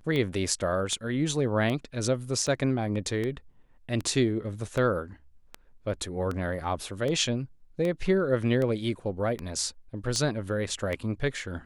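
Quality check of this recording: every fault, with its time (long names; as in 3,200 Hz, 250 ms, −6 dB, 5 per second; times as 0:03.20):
scratch tick 78 rpm −19 dBFS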